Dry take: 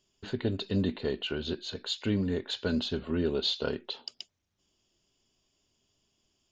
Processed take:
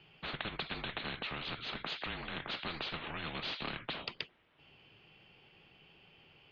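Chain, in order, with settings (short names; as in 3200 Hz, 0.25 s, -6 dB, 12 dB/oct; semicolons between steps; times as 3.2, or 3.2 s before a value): mistuned SSB -240 Hz 370–3400 Hz; spectral compressor 4:1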